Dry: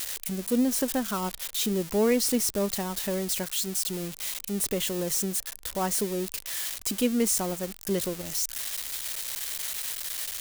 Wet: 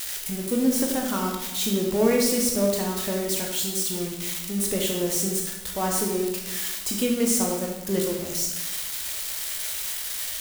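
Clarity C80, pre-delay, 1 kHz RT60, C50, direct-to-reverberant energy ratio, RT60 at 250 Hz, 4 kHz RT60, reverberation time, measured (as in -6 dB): 5.5 dB, 14 ms, 1.0 s, 3.5 dB, -0.5 dB, 1.2 s, 0.85 s, 1.1 s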